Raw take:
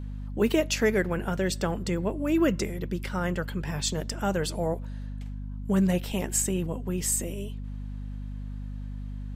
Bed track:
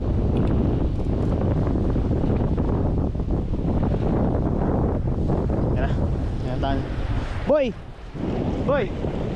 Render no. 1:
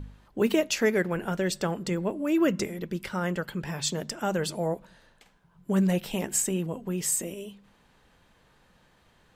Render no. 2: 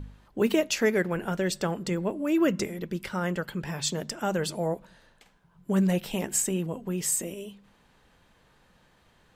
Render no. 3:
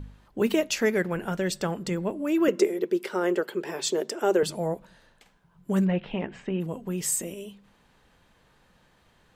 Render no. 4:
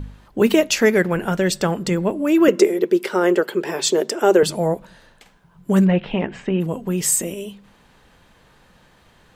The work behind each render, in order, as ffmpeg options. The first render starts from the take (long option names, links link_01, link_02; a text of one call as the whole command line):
ffmpeg -i in.wav -af "bandreject=frequency=50:width_type=h:width=4,bandreject=frequency=100:width_type=h:width=4,bandreject=frequency=150:width_type=h:width=4,bandreject=frequency=200:width_type=h:width=4,bandreject=frequency=250:width_type=h:width=4" out.wav
ffmpeg -i in.wav -af anull out.wav
ffmpeg -i in.wav -filter_complex "[0:a]asettb=1/sr,asplit=3[link_01][link_02][link_03];[link_01]atrim=end=2.484[link_04];[link_02]atrim=start=2.48:end=4.43,asetpts=PTS-STARTPTS,afade=type=in:duration=0.004:curve=qsin,afade=type=out:start_time=1.946:duration=0.004:curve=qsin,highpass=frequency=380:width_type=q:width=4.7[link_05];[link_03]atrim=start=4.426[link_06];[link_04][link_05]acrossfade=duration=0.004:curve1=hsin:curve2=qsin[link_07];[link_07][link_06]acrossfade=duration=0.004:curve1=qsin:curve2=hsin,asplit=3[link_08][link_09][link_10];[link_08]afade=type=out:start_time=5.84:duration=0.02[link_11];[link_09]lowpass=frequency=2900:width=0.5412,lowpass=frequency=2900:width=1.3066,afade=type=in:start_time=5.84:duration=0.02,afade=type=out:start_time=6.6:duration=0.02[link_12];[link_10]afade=type=in:start_time=6.6:duration=0.02[link_13];[link_11][link_12][link_13]amix=inputs=3:normalize=0" out.wav
ffmpeg -i in.wav -af "volume=8.5dB,alimiter=limit=-2dB:level=0:latency=1" out.wav